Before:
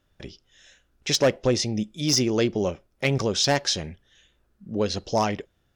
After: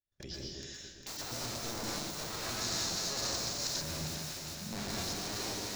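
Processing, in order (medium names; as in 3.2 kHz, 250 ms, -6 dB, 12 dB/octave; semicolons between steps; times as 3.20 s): bass shelf 120 Hz +2 dB; hum notches 60/120/180/240/300 Hz; integer overflow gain 25.5 dB; echo whose repeats swap between lows and highs 201 ms, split 940 Hz, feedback 63%, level -6 dB; peak limiter -32.5 dBFS, peak gain reduction 12 dB; plate-style reverb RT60 0.82 s, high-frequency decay 0.95×, pre-delay 105 ms, DRR -1 dB; expander -50 dBFS; harmonic-percussive split percussive -4 dB; de-esser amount 80%; high-order bell 5.3 kHz +9 dB 1.1 oct, from 2.60 s +15.5 dB, from 3.80 s +9 dB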